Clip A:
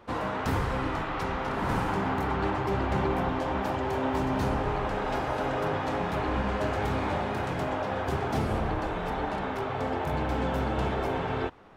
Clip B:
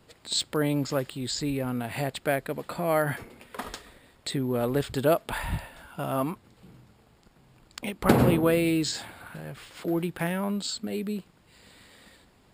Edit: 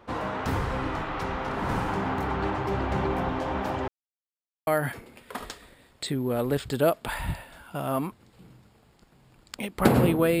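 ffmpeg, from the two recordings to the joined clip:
-filter_complex "[0:a]apad=whole_dur=10.4,atrim=end=10.4,asplit=2[a][b];[a]atrim=end=3.88,asetpts=PTS-STARTPTS,afade=t=out:st=3.876:d=0.004:c=hsin[c];[b]atrim=start=3.88:end=4.67,asetpts=PTS-STARTPTS,volume=0[d];[1:a]atrim=start=2.91:end=8.64,asetpts=PTS-STARTPTS,afade=t=in:d=0.004:c=hsin[e];[c][d][e]concat=n=3:v=0:a=1"

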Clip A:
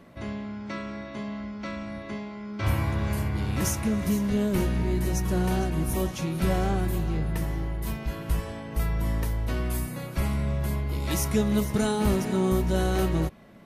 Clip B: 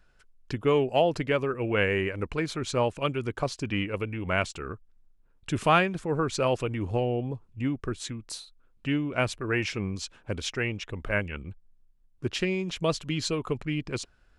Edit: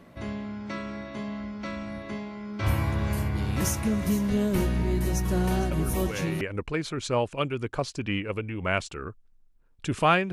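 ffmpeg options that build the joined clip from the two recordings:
-filter_complex "[1:a]asplit=2[a][b];[0:a]apad=whole_dur=10.32,atrim=end=10.32,atrim=end=6.412[c];[b]atrim=start=2.048:end=5.96[d];[a]atrim=start=1.35:end=2.05,asetpts=PTS-STARTPTS,volume=-10.5dB,afade=t=in:d=0.004:c=hsin,afade=t=out:st=0.696:d=0.004:c=hsin,adelay=5710[e];[c][d]acrossfade=d=0.004:c1=hsin:c2=hsin[f];[f][e]amix=inputs=2:normalize=0"

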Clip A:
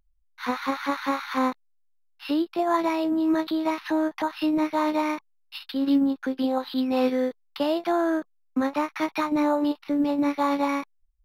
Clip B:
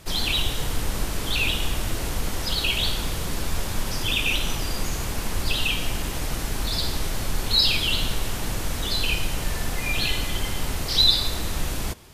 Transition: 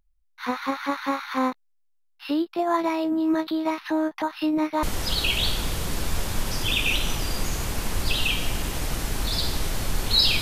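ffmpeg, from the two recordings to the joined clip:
-filter_complex "[0:a]apad=whole_dur=10.41,atrim=end=10.41,atrim=end=4.832[a];[1:a]atrim=start=2.228:end=7.81[b];[a][b]acrossfade=d=0.004:c1=hsin:c2=hsin"

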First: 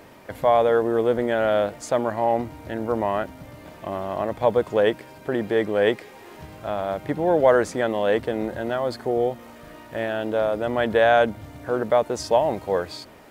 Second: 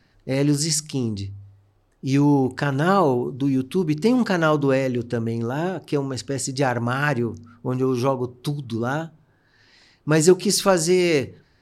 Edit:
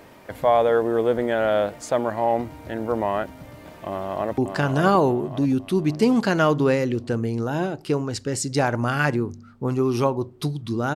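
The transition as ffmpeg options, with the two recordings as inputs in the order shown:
-filter_complex "[0:a]apad=whole_dur=10.95,atrim=end=10.95,atrim=end=4.382[a];[1:a]atrim=start=2.408:end=8.98[b];[a][b]acrossfade=d=0.004:c1=hsin:c2=hsin,asplit=2[c][d];[d]afade=t=in:st=3.88:d=0.01,afade=t=out:st=4.38:d=0.01,aecho=0:1:570|1140|1710|2280|2850|3420:0.562341|0.253054|0.113874|0.0512434|0.0230595|0.0103768[e];[c][e]amix=inputs=2:normalize=0"

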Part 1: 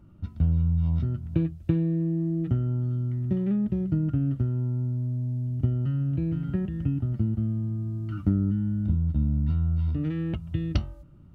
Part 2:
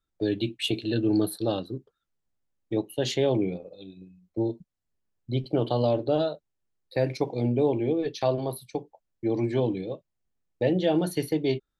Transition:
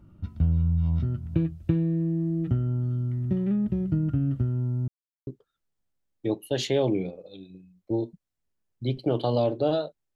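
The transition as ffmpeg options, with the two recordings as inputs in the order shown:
-filter_complex "[0:a]apad=whole_dur=10.15,atrim=end=10.15,asplit=2[a][b];[a]atrim=end=4.88,asetpts=PTS-STARTPTS,afade=t=out:st=4.876:d=0.004:c=hsin[c];[b]atrim=start=4.88:end=5.27,asetpts=PTS-STARTPTS,volume=0[d];[1:a]atrim=start=1.74:end=6.62,asetpts=PTS-STARTPTS,afade=t=in:d=0.004:c=hsin[e];[c][d][e]concat=n=3:v=0:a=1"

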